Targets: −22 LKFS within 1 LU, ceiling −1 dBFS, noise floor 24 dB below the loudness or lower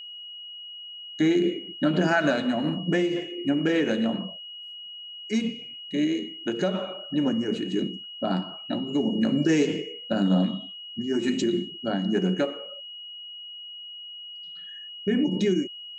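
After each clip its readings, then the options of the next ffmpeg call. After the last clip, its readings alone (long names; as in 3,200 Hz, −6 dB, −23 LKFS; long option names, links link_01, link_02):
interfering tone 2,900 Hz; level of the tone −38 dBFS; integrated loudness −26.0 LKFS; sample peak −9.5 dBFS; target loudness −22.0 LKFS
→ -af "bandreject=frequency=2900:width=30"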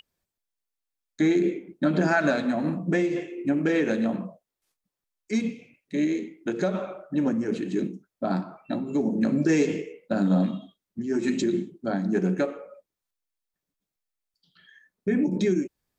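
interfering tone none found; integrated loudness −26.5 LKFS; sample peak −10.0 dBFS; target loudness −22.0 LKFS
→ -af "volume=4.5dB"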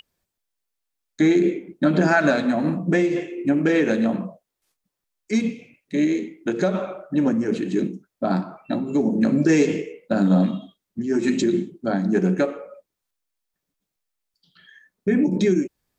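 integrated loudness −22.0 LKFS; sample peak −5.5 dBFS; background noise floor −83 dBFS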